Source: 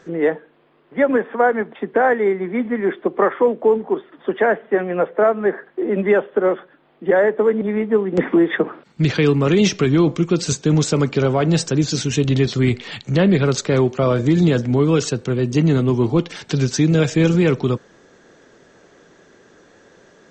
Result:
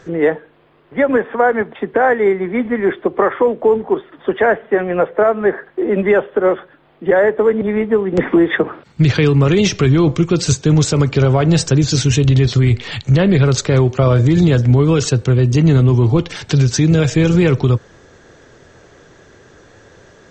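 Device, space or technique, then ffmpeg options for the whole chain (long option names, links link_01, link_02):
car stereo with a boomy subwoofer: -af "lowshelf=frequency=140:width_type=q:width=1.5:gain=9,alimiter=limit=-9dB:level=0:latency=1:release=121,volume=5dB"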